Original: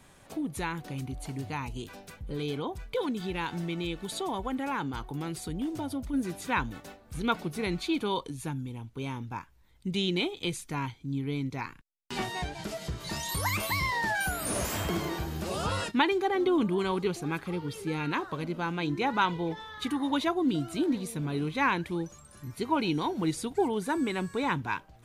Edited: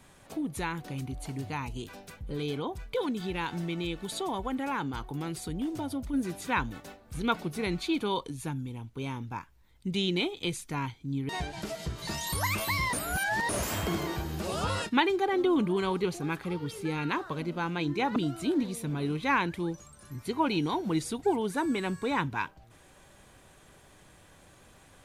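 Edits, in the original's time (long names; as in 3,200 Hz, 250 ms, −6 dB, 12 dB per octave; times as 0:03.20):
0:11.29–0:12.31: remove
0:13.95–0:14.51: reverse
0:19.18–0:20.48: remove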